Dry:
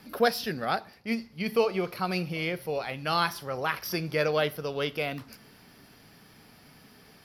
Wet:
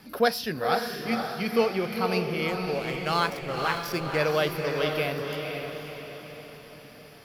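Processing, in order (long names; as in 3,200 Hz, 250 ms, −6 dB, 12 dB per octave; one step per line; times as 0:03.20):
0:02.48–0:04.18: slack as between gear wheels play −32 dBFS
feedback delay with all-pass diffusion 518 ms, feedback 49%, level −4.5 dB
level +1 dB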